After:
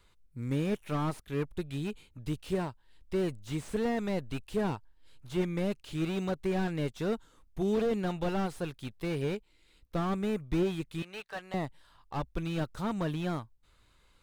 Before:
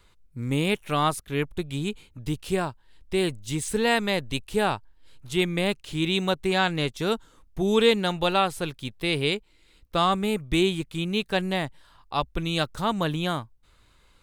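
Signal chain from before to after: 11.02–11.54 three-band isolator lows -22 dB, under 580 Hz, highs -14 dB, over 5500 Hz; slew limiter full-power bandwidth 43 Hz; gain -5.5 dB

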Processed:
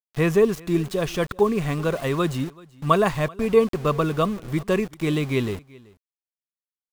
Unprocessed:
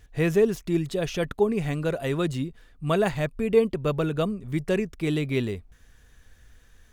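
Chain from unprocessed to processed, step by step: bell 1100 Hz +12.5 dB 0.27 oct; sample gate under -37 dBFS; on a send: echo 0.382 s -23.5 dB; on the sum: gain +2.5 dB

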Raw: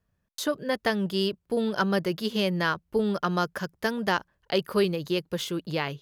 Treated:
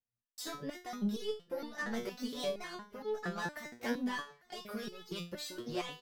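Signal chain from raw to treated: repeated pitch sweeps +4 st, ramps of 0.203 s; gate with hold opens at -58 dBFS; in parallel at -2.5 dB: negative-ratio compressor -29 dBFS; on the sum: soft clip -21.5 dBFS, distortion -12 dB; feedback echo 0.853 s, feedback 24%, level -23 dB; stepped resonator 4.3 Hz 120–430 Hz; gain +2 dB

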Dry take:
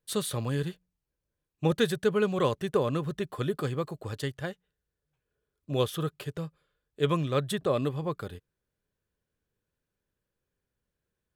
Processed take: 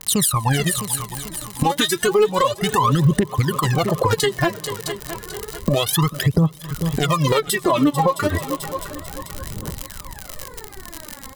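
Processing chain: Wiener smoothing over 15 samples; recorder AGC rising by 46 dB/s; low shelf 190 Hz -8 dB; reverb RT60 0.85 s, pre-delay 77 ms, DRR 19 dB; phaser 0.31 Hz, delay 3.8 ms, feedback 80%; reverb removal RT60 1.1 s; crackle 77/s -40 dBFS; high shelf 5800 Hz +10.5 dB; comb 1 ms, depth 40%; multi-head echo 0.22 s, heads second and third, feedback 40%, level -23 dB; compressor 8:1, threshold -31 dBFS, peak gain reduction 17 dB; maximiser +26 dB; gain -7 dB

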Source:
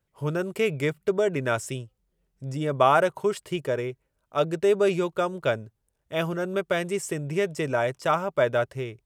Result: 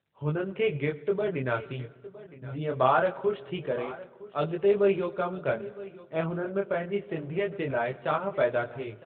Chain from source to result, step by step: 1.77–2.71 notches 50/100 Hz; 5.39–6.91 LPF 2900 Hz -> 1800 Hz 12 dB/oct; chorus 0.23 Hz, delay 19.5 ms, depth 5.6 ms; feedback echo 0.962 s, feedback 29%, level -17.5 dB; reverb RT60 1.6 s, pre-delay 18 ms, DRR 17 dB; AMR-NB 12.2 kbps 8000 Hz

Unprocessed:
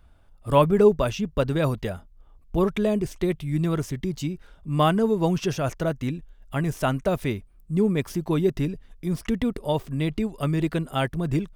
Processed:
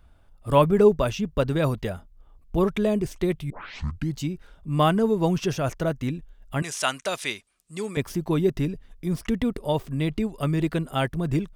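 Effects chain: 3.5 tape start 0.67 s; 6.62–7.97 weighting filter ITU-R 468

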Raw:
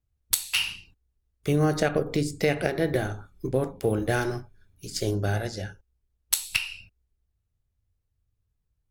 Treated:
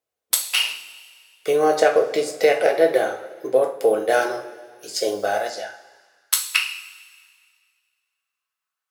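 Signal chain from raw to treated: two-slope reverb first 0.31 s, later 2 s, from -17 dB, DRR 2.5 dB; high-pass sweep 530 Hz -> 1200 Hz, 5.21–6.38; 5.05–5.49 added noise violet -61 dBFS; gain +3 dB

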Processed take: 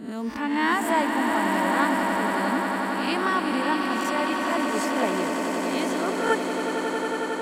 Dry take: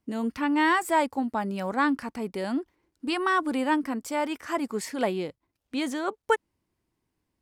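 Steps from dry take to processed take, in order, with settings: spectral swells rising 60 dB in 0.53 s; swelling echo 91 ms, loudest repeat 8, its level -9 dB; gain -2 dB

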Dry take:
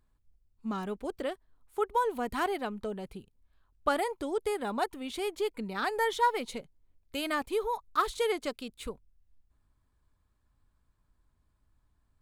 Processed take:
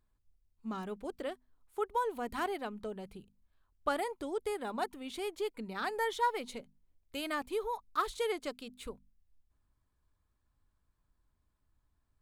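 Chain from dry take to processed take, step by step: notches 50/100/150/200/250 Hz; gain -4.5 dB

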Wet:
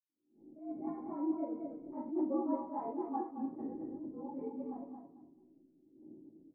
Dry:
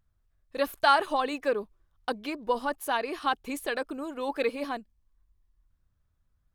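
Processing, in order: inharmonic rescaling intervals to 109%; wind noise 130 Hz -34 dBFS; Doppler pass-by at 2.44, 38 m/s, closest 16 m; spectral gate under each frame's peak -30 dB strong; low shelf 62 Hz +8.5 dB; compressor 2.5:1, threshold -43 dBFS, peak gain reduction 12.5 dB; vocal tract filter u; feedback echo 0.221 s, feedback 21%, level -6 dB; reverb, pre-delay 77 ms; attack slew limiter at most 120 dB/s; gain +16.5 dB

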